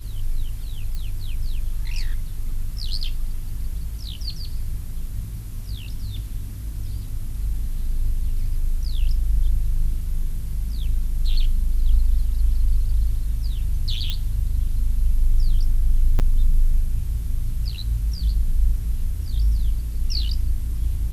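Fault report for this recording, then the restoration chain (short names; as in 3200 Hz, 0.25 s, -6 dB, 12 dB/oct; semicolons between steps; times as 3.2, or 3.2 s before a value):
0.95 pop -19 dBFS
14.1 pop -12 dBFS
16.19–16.2 gap 8 ms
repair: de-click; interpolate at 16.19, 8 ms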